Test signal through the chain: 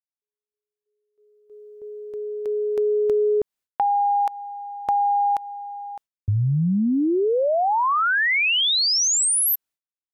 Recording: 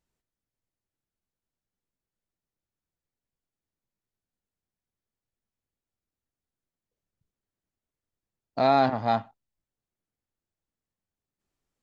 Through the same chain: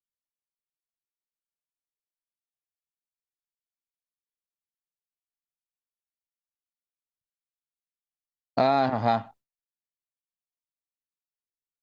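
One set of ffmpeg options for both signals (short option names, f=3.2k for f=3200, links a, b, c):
-af "agate=range=-33dB:threshold=-47dB:ratio=3:detection=peak,acompressor=threshold=-25dB:ratio=6,volume=6.5dB"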